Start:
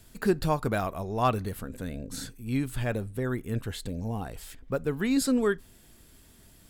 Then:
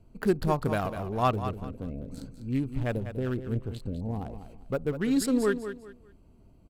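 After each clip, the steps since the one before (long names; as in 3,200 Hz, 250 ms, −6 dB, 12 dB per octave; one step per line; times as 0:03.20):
adaptive Wiener filter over 25 samples
on a send: repeating echo 198 ms, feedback 27%, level −10.5 dB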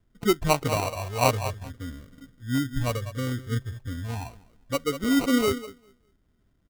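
noise reduction from a noise print of the clip's start 14 dB
low-pass that shuts in the quiet parts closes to 1,100 Hz, open at −21.5 dBFS
decimation without filtering 26×
level +3.5 dB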